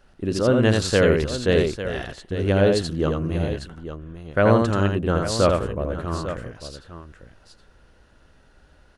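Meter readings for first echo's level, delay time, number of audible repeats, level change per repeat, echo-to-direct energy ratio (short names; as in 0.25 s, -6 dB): -4.0 dB, 82 ms, 2, no steady repeat, -3.5 dB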